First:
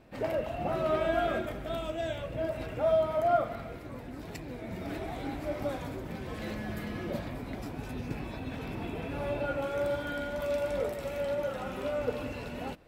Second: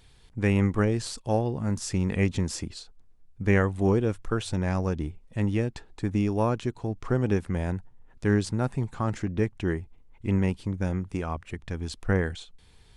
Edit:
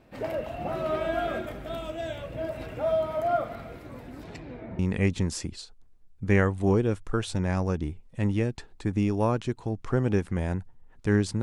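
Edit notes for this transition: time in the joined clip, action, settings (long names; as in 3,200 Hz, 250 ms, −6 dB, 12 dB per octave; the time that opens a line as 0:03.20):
first
0:04.23–0:04.79: low-pass filter 9,100 Hz → 1,200 Hz
0:04.79: continue with second from 0:01.97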